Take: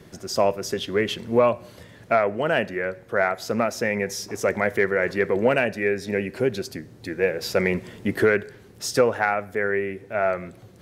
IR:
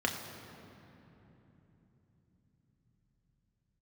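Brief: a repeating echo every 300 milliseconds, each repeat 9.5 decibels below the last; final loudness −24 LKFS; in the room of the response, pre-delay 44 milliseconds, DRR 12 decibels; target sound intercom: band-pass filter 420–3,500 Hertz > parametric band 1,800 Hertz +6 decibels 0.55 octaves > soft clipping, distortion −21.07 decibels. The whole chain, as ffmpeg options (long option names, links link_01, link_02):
-filter_complex "[0:a]aecho=1:1:300|600|900|1200:0.335|0.111|0.0365|0.012,asplit=2[link_01][link_02];[1:a]atrim=start_sample=2205,adelay=44[link_03];[link_02][link_03]afir=irnorm=-1:irlink=0,volume=-20dB[link_04];[link_01][link_04]amix=inputs=2:normalize=0,highpass=420,lowpass=3500,equalizer=frequency=1800:width_type=o:width=0.55:gain=6,asoftclip=threshold=-9.5dB"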